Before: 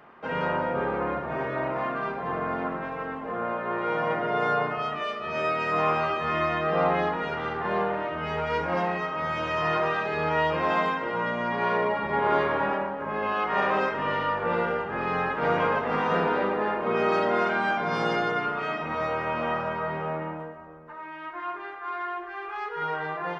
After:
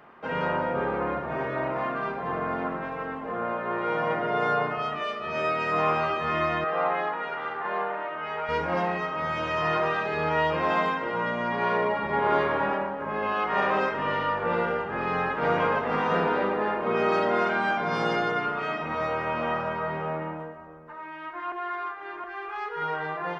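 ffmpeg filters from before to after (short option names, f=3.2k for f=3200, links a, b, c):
-filter_complex "[0:a]asettb=1/sr,asplit=3[a][b][c];[a]atrim=end=6.644[d];[b]atrim=start=6.64:end=8.49,asetpts=PTS-STARTPTS,afade=t=in:d=0.004:c=qsin,afade=t=out:st=1.846:d=0.004:c=qsin,bandpass=f=1.3k:t=q:w=0.62[e];[c]atrim=start=8.486[f];[d][e]acrossfade=d=0.004:c1=hsin:c2=qsin[g];[g][f]acrossfade=d=0.004:c1=qsin:c2=hsin,asplit=3[h][i][j];[h]atrim=end=21.522[k];[i]atrim=start=21.518:end=22.242,asetpts=PTS-STARTPTS,areverse[l];[j]atrim=start=22.238[m];[k][l]acrossfade=d=0.004:c1=hsin:c2=hsin[n];[n][m]acrossfade=d=0.004:c1=hsin:c2=hsin"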